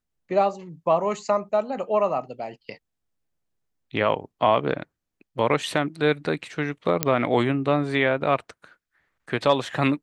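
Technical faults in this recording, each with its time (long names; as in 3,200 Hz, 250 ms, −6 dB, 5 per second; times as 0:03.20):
0:07.03: click −2 dBFS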